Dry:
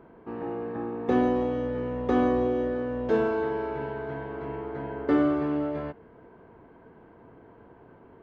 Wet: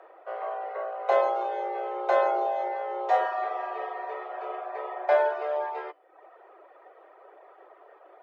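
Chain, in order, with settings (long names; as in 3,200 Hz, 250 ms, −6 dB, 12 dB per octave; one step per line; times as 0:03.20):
hum removal 180.1 Hz, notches 29
reverb reduction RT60 0.7 s
frequency shifter +300 Hz
level +1.5 dB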